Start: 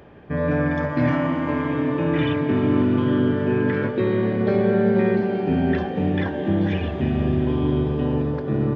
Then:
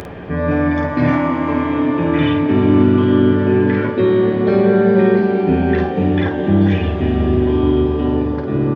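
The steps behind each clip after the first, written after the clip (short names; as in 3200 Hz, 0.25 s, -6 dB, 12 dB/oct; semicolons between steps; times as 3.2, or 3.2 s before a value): upward compressor, threshold -26 dBFS; on a send: early reflections 11 ms -6.5 dB, 51 ms -5.5 dB; on the sum: gain +4 dB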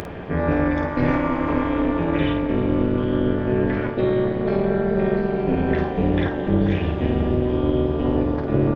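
vocal rider within 4 dB 0.5 s; AM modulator 240 Hz, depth 65%; gain -2.5 dB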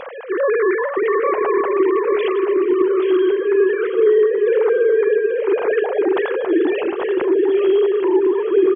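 sine-wave speech; feedback echo 0.83 s, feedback 43%, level -8.5 dB; gain +3.5 dB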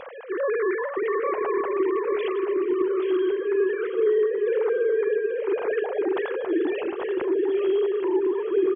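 bell 66 Hz +4 dB 1.6 oct; gain -7.5 dB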